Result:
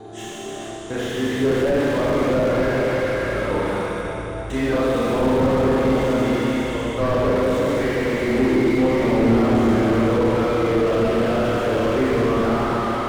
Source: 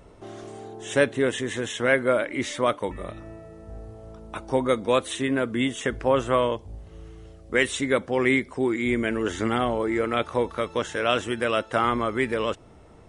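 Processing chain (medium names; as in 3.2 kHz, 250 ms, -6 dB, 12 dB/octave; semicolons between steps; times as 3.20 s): slices played last to first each 225 ms, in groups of 4; Schroeder reverb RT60 3.6 s, combs from 27 ms, DRR -9.5 dB; slew-rate limiter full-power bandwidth 77 Hz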